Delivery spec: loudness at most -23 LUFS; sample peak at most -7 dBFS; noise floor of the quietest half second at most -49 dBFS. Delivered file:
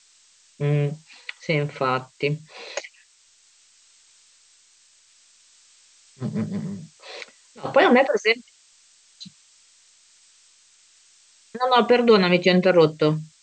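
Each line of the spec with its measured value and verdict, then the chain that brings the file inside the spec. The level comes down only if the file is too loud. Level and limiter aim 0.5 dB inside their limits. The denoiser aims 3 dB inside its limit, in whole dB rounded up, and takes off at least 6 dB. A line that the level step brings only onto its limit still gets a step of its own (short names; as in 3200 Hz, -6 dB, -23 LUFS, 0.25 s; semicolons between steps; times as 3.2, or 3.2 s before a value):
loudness -21.0 LUFS: fail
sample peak -4.0 dBFS: fail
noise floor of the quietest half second -58 dBFS: OK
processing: gain -2.5 dB; limiter -7.5 dBFS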